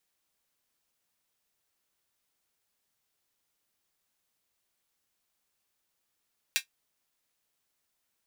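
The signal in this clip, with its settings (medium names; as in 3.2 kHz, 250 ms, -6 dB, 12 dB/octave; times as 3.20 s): closed hi-hat, high-pass 2.2 kHz, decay 0.11 s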